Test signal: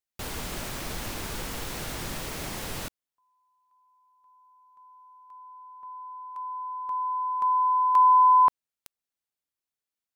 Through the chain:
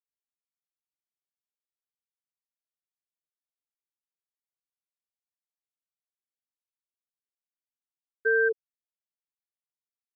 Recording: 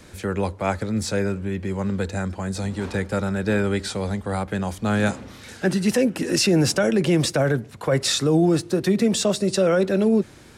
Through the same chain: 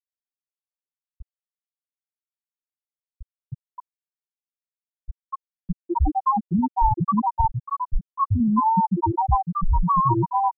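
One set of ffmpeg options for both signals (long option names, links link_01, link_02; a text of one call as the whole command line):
ffmpeg -i in.wav -filter_complex "[0:a]aeval=exprs='val(0)*sin(2*PI*560*n/s)':channel_layout=same,aecho=1:1:1:0.32,acrossover=split=530|2400[link_01][link_02][link_03];[link_01]adelay=40[link_04];[link_02]adelay=300[link_05];[link_04][link_05][link_03]amix=inputs=3:normalize=0,afftfilt=real='re*gte(hypot(re,im),0.562)':imag='im*gte(hypot(re,im),0.562)':win_size=1024:overlap=0.75,volume=6dB" out.wav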